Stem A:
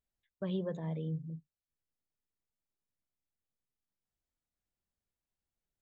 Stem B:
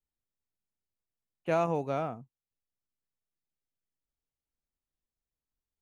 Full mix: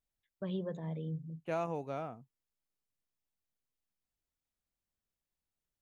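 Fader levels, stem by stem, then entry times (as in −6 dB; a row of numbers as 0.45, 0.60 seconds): −2.0, −7.5 decibels; 0.00, 0.00 seconds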